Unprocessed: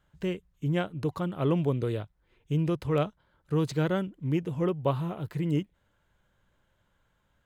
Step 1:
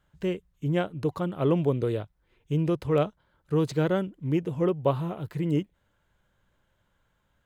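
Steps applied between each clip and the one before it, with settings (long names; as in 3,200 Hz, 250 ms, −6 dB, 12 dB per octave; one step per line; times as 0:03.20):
dynamic equaliser 480 Hz, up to +4 dB, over −36 dBFS, Q 0.79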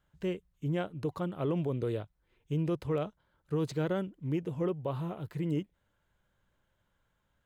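brickwall limiter −18.5 dBFS, peak gain reduction 7.5 dB
level −5 dB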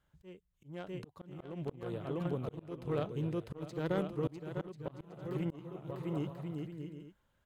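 bouncing-ball delay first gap 650 ms, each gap 0.6×, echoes 5
harmonic generator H 3 −14 dB, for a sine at −17.5 dBFS
volume swells 570 ms
level +6 dB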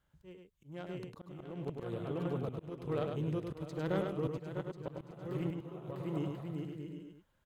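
single-tap delay 102 ms −5 dB
level −1 dB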